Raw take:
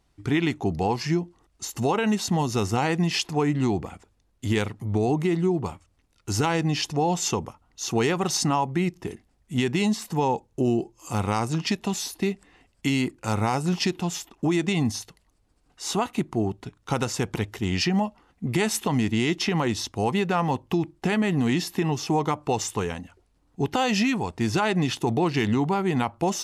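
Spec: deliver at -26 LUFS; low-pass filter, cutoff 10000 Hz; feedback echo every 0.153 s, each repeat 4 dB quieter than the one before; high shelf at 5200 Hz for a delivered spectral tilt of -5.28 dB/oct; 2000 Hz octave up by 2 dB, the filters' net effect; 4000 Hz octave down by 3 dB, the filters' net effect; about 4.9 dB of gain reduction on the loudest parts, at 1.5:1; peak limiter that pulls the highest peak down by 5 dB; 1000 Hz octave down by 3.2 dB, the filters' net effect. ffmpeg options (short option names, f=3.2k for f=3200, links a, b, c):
-af "lowpass=10k,equalizer=f=1k:t=o:g=-5,equalizer=f=2k:t=o:g=5.5,equalizer=f=4k:t=o:g=-4.5,highshelf=f=5.2k:g=-3,acompressor=threshold=-33dB:ratio=1.5,alimiter=limit=-21dB:level=0:latency=1,aecho=1:1:153|306|459|612|765|918|1071|1224|1377:0.631|0.398|0.25|0.158|0.0994|0.0626|0.0394|0.0249|0.0157,volume=4dB"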